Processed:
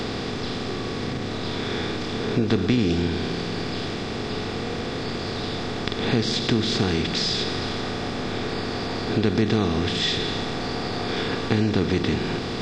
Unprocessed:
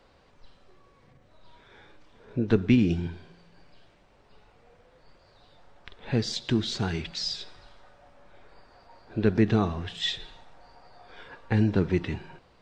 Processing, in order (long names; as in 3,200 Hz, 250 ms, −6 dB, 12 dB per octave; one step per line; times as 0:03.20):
compressor on every frequency bin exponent 0.4
downward compressor 2 to 1, threshold −27 dBFS, peak gain reduction 8 dB
level +4.5 dB